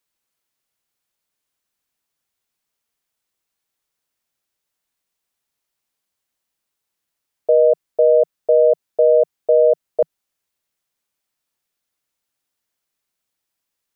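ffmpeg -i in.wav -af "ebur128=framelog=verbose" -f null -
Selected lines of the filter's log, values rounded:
Integrated loudness:
  I:         -16.2 LUFS
  Threshold: -26.3 LUFS
Loudness range:
  LRA:        10.6 LU
  Threshold: -39.0 LUFS
  LRA low:   -26.9 LUFS
  LRA high:  -16.3 LUFS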